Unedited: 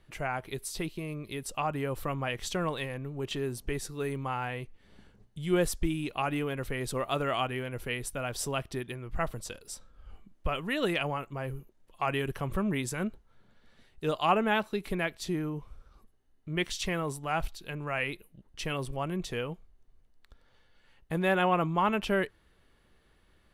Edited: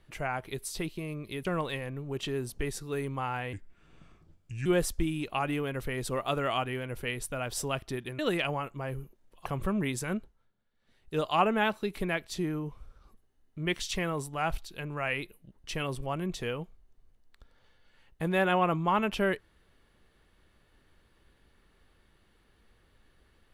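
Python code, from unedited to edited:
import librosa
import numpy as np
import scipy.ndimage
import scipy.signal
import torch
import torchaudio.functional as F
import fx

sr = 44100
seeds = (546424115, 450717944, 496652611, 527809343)

y = fx.edit(x, sr, fx.cut(start_s=1.45, length_s=1.08),
    fx.speed_span(start_s=4.61, length_s=0.88, speed=0.78),
    fx.cut(start_s=9.02, length_s=1.73),
    fx.cut(start_s=12.02, length_s=0.34),
    fx.fade_down_up(start_s=13.04, length_s=1.03, db=-17.5, fade_s=0.38), tone=tone)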